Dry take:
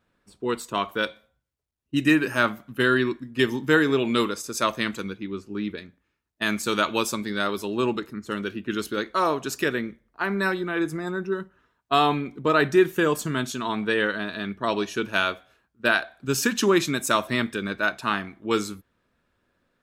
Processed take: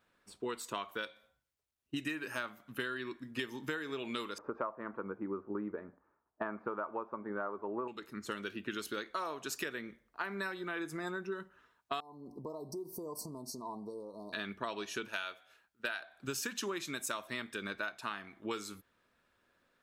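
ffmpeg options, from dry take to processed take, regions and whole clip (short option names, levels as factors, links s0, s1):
-filter_complex "[0:a]asettb=1/sr,asplit=3[s0][s1][s2];[s0]atrim=end=4.384[s3];[s1]atrim=start=4.38:end=7.88,asetpts=PTS-STARTPTS,afade=t=in:d=0.004:c=qsin,afade=t=out:st=3.496:d=0.004:c=qsin,lowpass=f=1200:w=0.5412,lowpass=f=1200:w=1.3066,equalizer=f=920:w=0.32:g=11.5[s4];[s2]atrim=start=7.876[s5];[s3][s4]acrossfade=d=0.004:c1=hsin:c2=qsin[s6];[s6][s5]acrossfade=d=0.004:c1=qsin:c2=hsin,asettb=1/sr,asplit=3[s7][s8][s9];[s7]atrim=end=12.004[s10];[s8]atrim=start=12:end=14.33,asetpts=PTS-STARTPTS,afade=t=in:d=0.004:c=qsin,afade=t=out:st=2.326:d=0.004:c=qsin,equalizer=f=7000:w=4.8:g=-14,acompressor=threshold=0.0178:ratio=6:attack=3.2:release=140:knee=1:detection=peak,asuperstop=centerf=2200:order=20:qfactor=0.65[s11];[s9]atrim=start=14.326[s12];[s10][s11]acrossfade=d=0.004:c1=hsin:c2=qsin[s13];[s13][s12]acrossfade=d=0.004:c1=qsin:c2=hsin,asettb=1/sr,asplit=3[s14][s15][s16];[s14]atrim=end=15.084[s17];[s15]atrim=start=15.08:end=16,asetpts=PTS-STARTPTS,afade=t=in:d=0.004:c=qsin,afade=t=out:st=0.916:d=0.004:c=qsin,lowshelf=f=460:g=-8.5,bandreject=f=1100:w=10[s18];[s16]atrim=start=15.996[s19];[s17][s18]acrossfade=d=0.004:c1=hsin:c2=qsin[s20];[s20][s19]acrossfade=d=0.004:c1=qsin:c2=hsin,lowshelf=f=350:g=-10,acompressor=threshold=0.0178:ratio=12"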